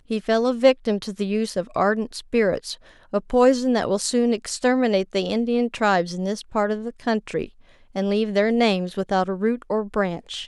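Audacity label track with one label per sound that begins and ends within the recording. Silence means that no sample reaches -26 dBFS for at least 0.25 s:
3.130000	7.440000	sound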